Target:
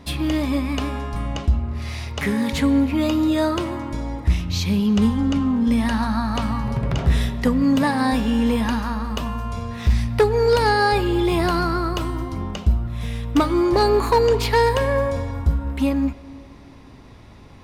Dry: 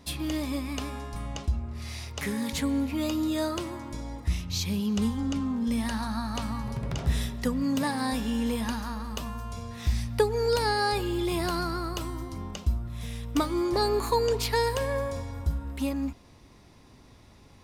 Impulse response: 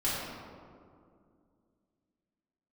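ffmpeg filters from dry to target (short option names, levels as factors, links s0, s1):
-filter_complex "[0:a]bass=f=250:g=1,treble=f=4000:g=-9,volume=8.41,asoftclip=hard,volume=0.119,asplit=2[s0][s1];[1:a]atrim=start_sample=2205,asetrate=40572,aresample=44100,lowshelf=f=470:g=-12[s2];[s1][s2]afir=irnorm=-1:irlink=0,volume=0.0891[s3];[s0][s3]amix=inputs=2:normalize=0,volume=2.66"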